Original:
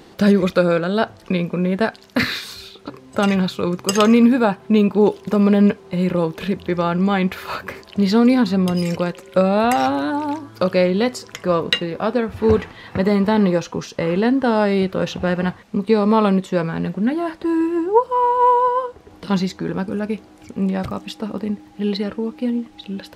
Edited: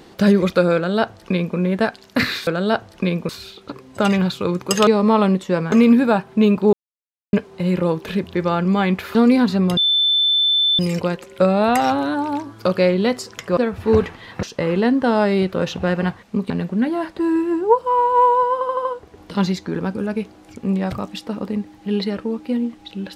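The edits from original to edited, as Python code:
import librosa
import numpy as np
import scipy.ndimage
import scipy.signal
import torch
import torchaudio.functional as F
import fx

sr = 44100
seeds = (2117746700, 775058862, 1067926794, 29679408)

y = fx.edit(x, sr, fx.duplicate(start_s=0.75, length_s=0.82, to_s=2.47),
    fx.silence(start_s=5.06, length_s=0.6),
    fx.cut(start_s=7.48, length_s=0.65),
    fx.insert_tone(at_s=8.75, length_s=1.02, hz=3530.0, db=-13.5),
    fx.cut(start_s=11.53, length_s=0.6),
    fx.cut(start_s=12.99, length_s=0.84),
    fx.move(start_s=15.9, length_s=0.85, to_s=4.05),
    fx.stutter(start_s=18.78, slice_s=0.08, count=5), tone=tone)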